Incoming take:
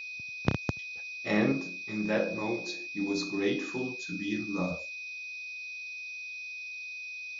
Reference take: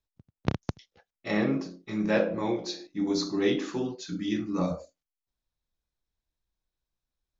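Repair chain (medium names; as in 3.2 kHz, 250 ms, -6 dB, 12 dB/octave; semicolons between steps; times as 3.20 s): band-stop 2.5 kHz, Q 30; noise print and reduce 30 dB; gain correction +4 dB, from 1.52 s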